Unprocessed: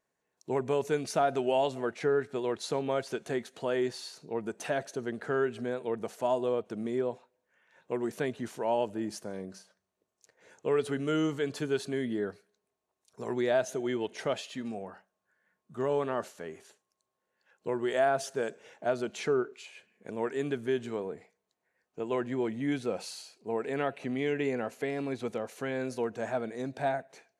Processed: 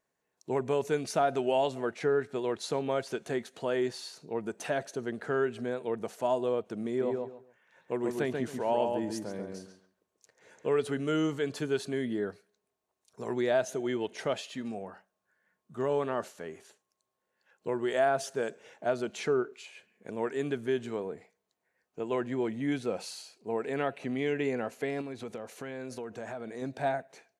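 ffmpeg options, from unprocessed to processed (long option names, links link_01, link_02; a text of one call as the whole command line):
ffmpeg -i in.wav -filter_complex "[0:a]asplit=3[link_01][link_02][link_03];[link_01]afade=type=out:start_time=7:duration=0.02[link_04];[link_02]asplit=2[link_05][link_06];[link_06]adelay=138,lowpass=frequency=2400:poles=1,volume=-3.5dB,asplit=2[link_07][link_08];[link_08]adelay=138,lowpass=frequency=2400:poles=1,volume=0.23,asplit=2[link_09][link_10];[link_10]adelay=138,lowpass=frequency=2400:poles=1,volume=0.23[link_11];[link_05][link_07][link_09][link_11]amix=inputs=4:normalize=0,afade=type=in:start_time=7:duration=0.02,afade=type=out:start_time=10.74:duration=0.02[link_12];[link_03]afade=type=in:start_time=10.74:duration=0.02[link_13];[link_04][link_12][link_13]amix=inputs=3:normalize=0,asettb=1/sr,asplit=3[link_14][link_15][link_16];[link_14]atrim=end=25.014[link_17];[link_15]atrim=start=25.01:end=26.62,asetpts=PTS-STARTPTS,afade=type=in:duration=0.004:curve=qsin,afade=type=out:start_time=1.606:duration=0.004:curve=qsin,acompressor=threshold=-35dB:ratio=6:attack=3.2:release=140:knee=1:detection=peak[link_18];[link_16]atrim=start=26.616[link_19];[link_17][link_18]acrossfade=duration=0.004:curve1=hsin:curve2=qsin[link_20];[link_20][link_19]acrossfade=duration=0.004:curve1=qsin:curve2=hsin" out.wav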